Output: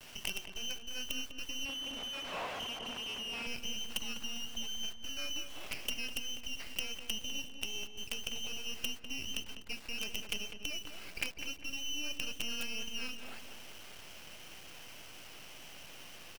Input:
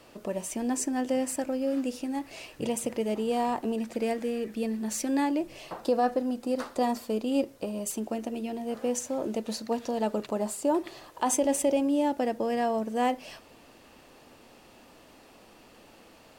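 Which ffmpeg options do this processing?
-filter_complex "[0:a]aemphasis=mode=production:type=50fm,asplit=3[a][b][c];[a]afade=t=out:st=9.43:d=0.02[d];[b]highpass=610,afade=t=in:st=9.43:d=0.02,afade=t=out:st=9.97:d=0.02[e];[c]afade=t=in:st=9.97:d=0.02[f];[d][e][f]amix=inputs=3:normalize=0,adynamicequalizer=threshold=0.00398:dfrequency=1000:dqfactor=3.5:tfrequency=1000:tqfactor=3.5:attack=5:release=100:ratio=0.375:range=2.5:mode=cutabove:tftype=bell,acompressor=threshold=-39dB:ratio=10,flanger=delay=1.8:depth=5.1:regen=-70:speed=0.46:shape=triangular,lowpass=f=2.8k:t=q:w=0.5098,lowpass=f=2.8k:t=q:w=0.6013,lowpass=f=2.8k:t=q:w=0.9,lowpass=f=2.8k:t=q:w=2.563,afreqshift=-3300,acrusher=bits=7:dc=4:mix=0:aa=0.000001,asplit=2[g][h];[h]adelay=200,lowpass=f=1.7k:p=1,volume=-6dB,asplit=2[i][j];[j]adelay=200,lowpass=f=1.7k:p=1,volume=0.46,asplit=2[k][l];[l]adelay=200,lowpass=f=1.7k:p=1,volume=0.46,asplit=2[m][n];[n]adelay=200,lowpass=f=1.7k:p=1,volume=0.46,asplit=2[o][p];[p]adelay=200,lowpass=f=1.7k:p=1,volume=0.46,asplit=2[q][r];[r]adelay=200,lowpass=f=1.7k:p=1,volume=0.46[s];[g][i][k][m][o][q][s]amix=inputs=7:normalize=0,asettb=1/sr,asplit=3[t][u][v];[t]atrim=end=1.654[w];[u]atrim=start=1.65:end=3.47,asetpts=PTS-STARTPTS,afade=t=in:d=0.004:c=qsin,afade=t=out:st=1.816:d=0.004:c=qsin,asplit=2[x][y];[y]highpass=f=720:p=1,volume=26dB,asoftclip=type=tanh:threshold=-35dB[z];[x][z]amix=inputs=2:normalize=0,lowpass=f=1.1k:p=1,volume=-6dB[aa];[v]atrim=start=3.466[ab];[w][aa]acrossfade=d=0.004:c1=hsin:c2=qsin[ac];[ac][ab]acrossfade=d=0.004:c1=qsin:c2=hsin,volume=9.5dB"

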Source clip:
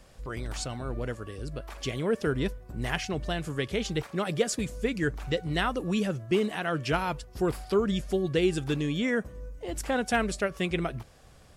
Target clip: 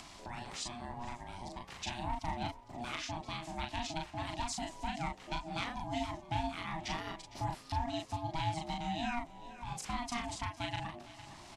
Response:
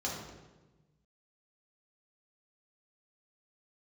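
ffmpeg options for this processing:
-filter_complex "[0:a]volume=20dB,asoftclip=hard,volume=-20dB,highpass=250,lowpass=7k,acompressor=threshold=-39dB:ratio=1.5,equalizer=f=950:t=o:w=1.2:g=-12.5,asplit=2[a][b];[b]adelay=38,volume=-2.5dB[c];[a][c]amix=inputs=2:normalize=0,aeval=exprs='val(0)*sin(2*PI*480*n/s)':c=same,asplit=2[d][e];[e]aecho=0:1:457|914|1371:0.1|0.036|0.013[f];[d][f]amix=inputs=2:normalize=0,acompressor=mode=upward:threshold=-42dB:ratio=2.5,volume=1dB"

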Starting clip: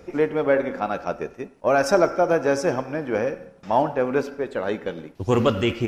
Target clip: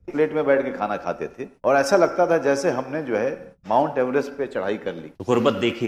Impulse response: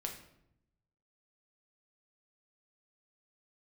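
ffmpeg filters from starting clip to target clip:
-filter_complex "[0:a]acrossover=split=140[a][b];[a]acompressor=threshold=-48dB:ratio=6[c];[b]agate=range=-32dB:threshold=-45dB:ratio=16:detection=peak[d];[c][d]amix=inputs=2:normalize=0,volume=1dB"

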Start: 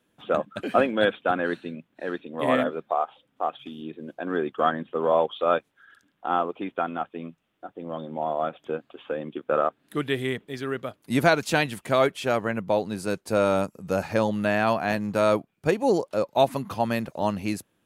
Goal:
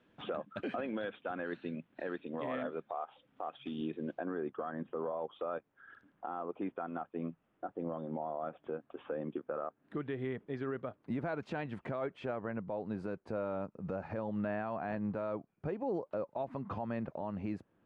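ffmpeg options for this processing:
-af "asetnsamples=n=441:p=0,asendcmd='4.2 lowpass f 1500',lowpass=3k,alimiter=level_in=6dB:limit=-24dB:level=0:latency=1:release=390,volume=-6dB,volume=2dB"

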